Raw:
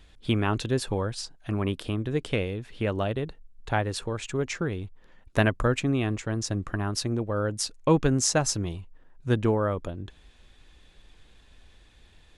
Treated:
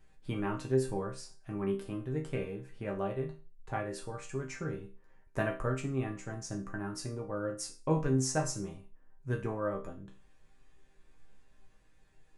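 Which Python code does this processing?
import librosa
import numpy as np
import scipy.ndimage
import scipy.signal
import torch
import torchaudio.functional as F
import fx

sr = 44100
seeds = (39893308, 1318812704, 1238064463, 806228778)

y = fx.peak_eq(x, sr, hz=3500.0, db=-12.5, octaves=0.85)
y = fx.resonator_bank(y, sr, root=48, chord='minor', decay_s=0.34)
y = y * librosa.db_to_amplitude(7.5)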